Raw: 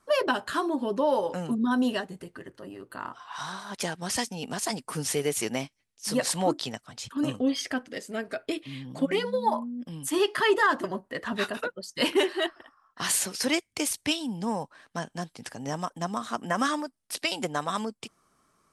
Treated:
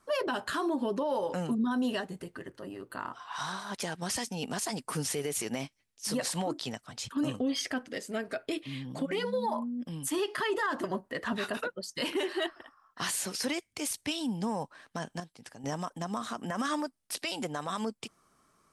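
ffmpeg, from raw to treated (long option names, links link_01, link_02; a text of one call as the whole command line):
ffmpeg -i in.wav -filter_complex "[0:a]asplit=3[link_01][link_02][link_03];[link_01]atrim=end=15.202[link_04];[link_02]atrim=start=15.198:end=15.642,asetpts=PTS-STARTPTS,volume=-9dB[link_05];[link_03]atrim=start=15.638[link_06];[link_04][link_05]acrossfade=duration=0.004:curve1=hsin:curve2=hsin[link_07];[link_07][link_06]acrossfade=duration=0.004:curve1=hsin:curve2=hsin,alimiter=limit=-23dB:level=0:latency=1:release=64" out.wav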